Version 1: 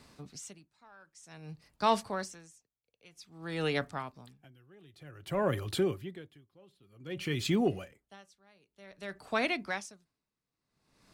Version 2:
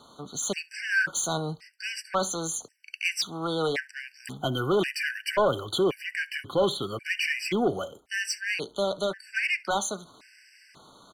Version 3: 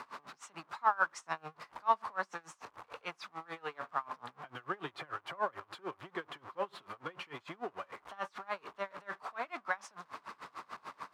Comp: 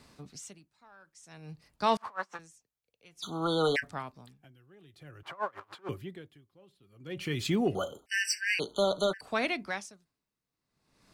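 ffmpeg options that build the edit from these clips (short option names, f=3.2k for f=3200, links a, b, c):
-filter_complex "[2:a]asplit=2[a][b];[1:a]asplit=2[c][d];[0:a]asplit=5[e][f][g][h][i];[e]atrim=end=1.972[j];[a]atrim=start=1.968:end=2.392[k];[f]atrim=start=2.388:end=3.24[l];[c]atrim=start=3.22:end=3.84[m];[g]atrim=start=3.82:end=5.232[n];[b]atrim=start=5.228:end=5.892[o];[h]atrim=start=5.888:end=7.752[p];[d]atrim=start=7.748:end=9.212[q];[i]atrim=start=9.208[r];[j][k]acrossfade=d=0.004:c1=hsin:c2=hsin[s];[s][l]acrossfade=d=0.004:c1=hsin:c2=hsin[t];[t][m]acrossfade=d=0.02:c1=tri:c2=tri[u];[u][n]acrossfade=d=0.02:c1=tri:c2=tri[v];[v][o]acrossfade=d=0.004:c1=hsin:c2=hsin[w];[w][p]acrossfade=d=0.004:c1=hsin:c2=hsin[x];[x][q]acrossfade=d=0.004:c1=hsin:c2=hsin[y];[y][r]acrossfade=d=0.004:c1=hsin:c2=hsin"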